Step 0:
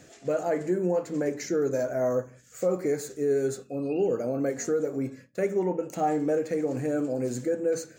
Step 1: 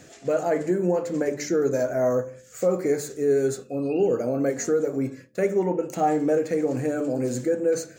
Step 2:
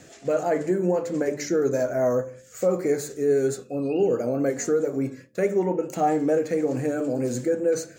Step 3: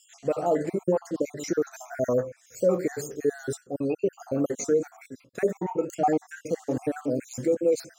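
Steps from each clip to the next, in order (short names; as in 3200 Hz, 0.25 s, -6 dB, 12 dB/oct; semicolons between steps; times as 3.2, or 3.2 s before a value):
de-hum 73.61 Hz, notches 9; gain +4 dB
vibrato 4.6 Hz 27 cents
random spectral dropouts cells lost 48%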